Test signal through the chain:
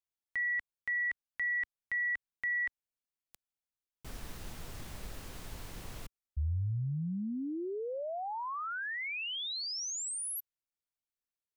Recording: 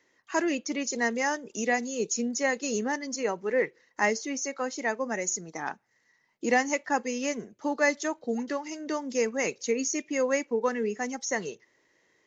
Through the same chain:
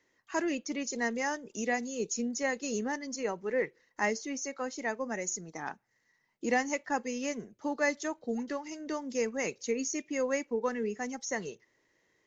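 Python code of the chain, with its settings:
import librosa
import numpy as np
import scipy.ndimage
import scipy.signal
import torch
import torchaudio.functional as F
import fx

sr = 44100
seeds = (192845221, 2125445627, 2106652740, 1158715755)

y = fx.low_shelf(x, sr, hz=110.0, db=10.0)
y = y * 10.0 ** (-5.0 / 20.0)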